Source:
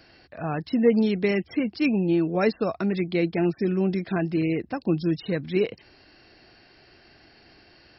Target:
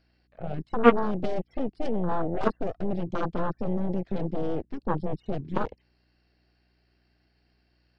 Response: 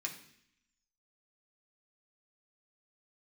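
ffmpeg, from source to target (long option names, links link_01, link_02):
-filter_complex "[0:a]acrossover=split=3300[link_01][link_02];[link_02]acompressor=threshold=-48dB:ratio=4:attack=1:release=60[link_03];[link_01][link_03]amix=inputs=2:normalize=0,aeval=exprs='val(0)+0.00355*(sin(2*PI*60*n/s)+sin(2*PI*2*60*n/s)/2+sin(2*PI*3*60*n/s)/3+sin(2*PI*4*60*n/s)/4+sin(2*PI*5*60*n/s)/5)':channel_layout=same,acontrast=76,aeval=exprs='0.631*(cos(1*acos(clip(val(0)/0.631,-1,1)))-cos(1*PI/2))+0.282*(cos(3*acos(clip(val(0)/0.631,-1,1)))-cos(3*PI/2))+0.0447*(cos(8*acos(clip(val(0)/0.631,-1,1)))-cos(8*PI/2))':channel_layout=same,afwtdn=0.0631"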